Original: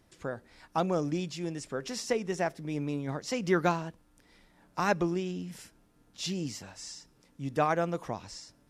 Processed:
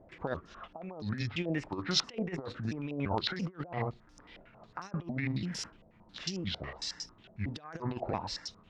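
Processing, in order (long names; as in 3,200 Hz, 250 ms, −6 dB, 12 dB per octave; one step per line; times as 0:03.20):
pitch shifter gated in a rhythm −5.5 semitones, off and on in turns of 339 ms
compressor whose output falls as the input rises −36 dBFS, ratio −0.5
low-pass on a step sequencer 11 Hz 650–5,500 Hz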